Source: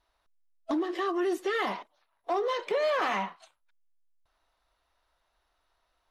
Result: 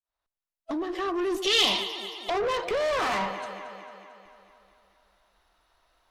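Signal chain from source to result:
fade in at the beginning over 1.84 s
on a send: delay that swaps between a low-pass and a high-pass 112 ms, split 830 Hz, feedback 77%, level −13 dB
on the sum: tube saturation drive 32 dB, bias 0.25
0:01.42–0:02.30: high shelf with overshoot 2,300 Hz +11.5 dB, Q 3
level +8 dB

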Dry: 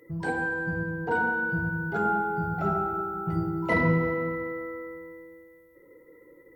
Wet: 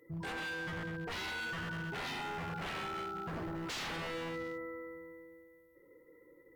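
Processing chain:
wave folding −27.5 dBFS
level −7.5 dB

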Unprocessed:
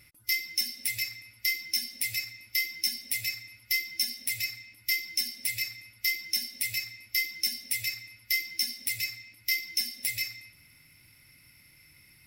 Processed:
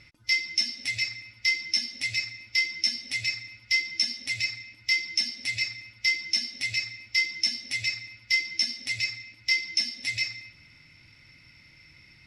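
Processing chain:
low-pass filter 6,300 Hz 24 dB per octave
level +5 dB

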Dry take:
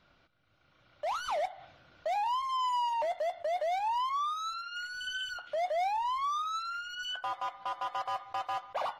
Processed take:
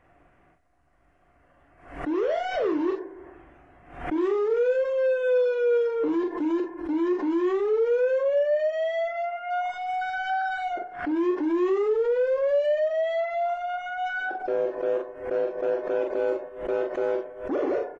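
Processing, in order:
wrong playback speed 15 ips tape played at 7.5 ips
double-tracking delay 42 ms −5 dB
dynamic equaliser 630 Hz, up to +6 dB, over −43 dBFS, Q 0.77
in parallel at +0.5 dB: brickwall limiter −29 dBFS, peak gain reduction 12 dB
on the sum: background raised ahead of every attack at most 100 dB per second
level −1 dB

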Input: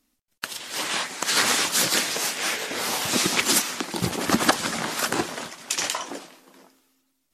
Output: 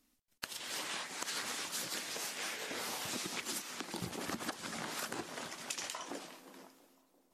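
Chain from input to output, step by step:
downward compressor 6 to 1, threshold −35 dBFS, peak gain reduction 20 dB
on a send: tape delay 342 ms, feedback 71%, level −18 dB, low-pass 1,200 Hz
on the sum: level −3.5 dB

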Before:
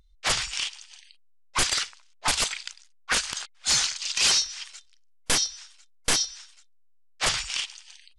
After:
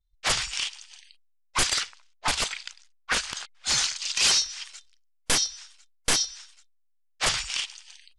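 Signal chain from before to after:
downward expander −51 dBFS
0:01.80–0:03.78: high-shelf EQ 6,800 Hz −7 dB

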